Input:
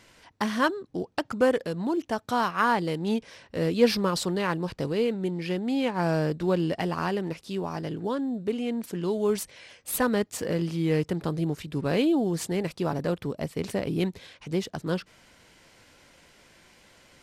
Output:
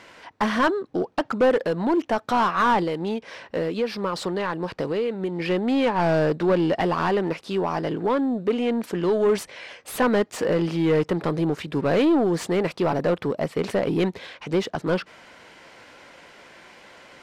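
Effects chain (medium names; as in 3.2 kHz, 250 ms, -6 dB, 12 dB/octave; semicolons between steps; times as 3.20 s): 2.83–5.40 s: compression 6:1, threshold -30 dBFS, peak gain reduction 15 dB; overdrive pedal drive 21 dB, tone 1.3 kHz, clips at -10 dBFS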